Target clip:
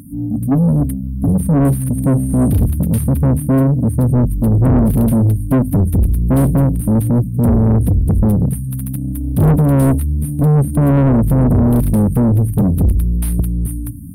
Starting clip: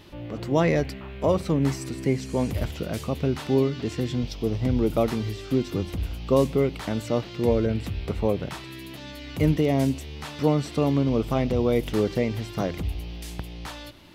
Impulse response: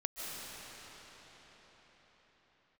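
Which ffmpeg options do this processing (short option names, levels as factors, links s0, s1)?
-filter_complex "[0:a]afftfilt=real='re*(1-between(b*sr/4096,300,8600))':imag='im*(1-between(b*sr/4096,300,8600))':win_size=4096:overlap=0.75,asubboost=boost=5.5:cutoff=140,asplit=2[s0][s1];[s1]highpass=f=720:p=1,volume=63.1,asoftclip=type=tanh:threshold=0.668[s2];[s0][s2]amix=inputs=2:normalize=0,lowpass=f=4300:p=1,volume=0.501"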